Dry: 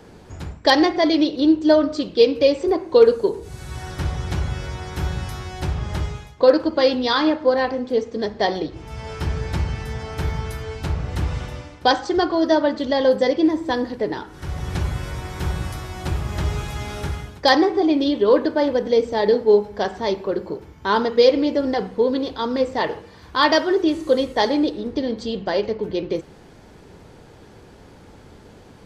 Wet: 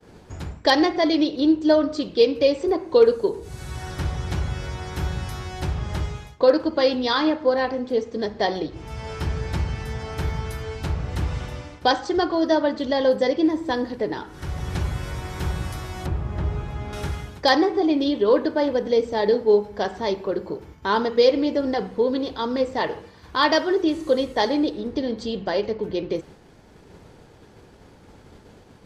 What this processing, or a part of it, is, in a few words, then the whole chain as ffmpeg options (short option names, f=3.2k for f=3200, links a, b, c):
parallel compression: -filter_complex "[0:a]asplit=2[a][b];[b]acompressor=threshold=-34dB:ratio=6,volume=-4.5dB[c];[a][c]amix=inputs=2:normalize=0,asettb=1/sr,asplit=3[d][e][f];[d]atrim=end=16.064[g];[e]atrim=start=16.06:end=16.93,asetpts=PTS-STARTPTS,afade=t=in:d=0.004:c=qsin,afade=t=out:st=0.866:d=0.004:c=qsin,lowpass=f=1k:p=1[h];[f]atrim=start=16.926[i];[g][h]acrossfade=d=0.004:c1=hsin:c2=qsin[j];[j][i]acrossfade=d=0.004:c1=qsin:c2=hsin,agate=range=-33dB:threshold=-36dB:ratio=3:detection=peak,volume=-3dB"